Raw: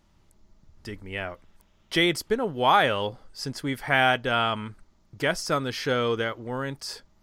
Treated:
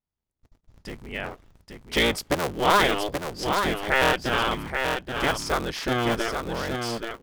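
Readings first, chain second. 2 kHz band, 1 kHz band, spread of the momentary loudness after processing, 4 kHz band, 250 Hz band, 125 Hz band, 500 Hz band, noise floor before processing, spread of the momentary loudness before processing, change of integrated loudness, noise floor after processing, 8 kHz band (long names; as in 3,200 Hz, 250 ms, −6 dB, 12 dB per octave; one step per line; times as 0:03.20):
+1.0 dB, +0.5 dB, 13 LU, +1.5 dB, +1.0 dB, +0.5 dB, +1.0 dB, −63 dBFS, 15 LU, +1.0 dB, −84 dBFS, +4.0 dB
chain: sub-harmonics by changed cycles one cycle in 3, inverted
noise gate −52 dBFS, range −29 dB
single-tap delay 829 ms −5.5 dB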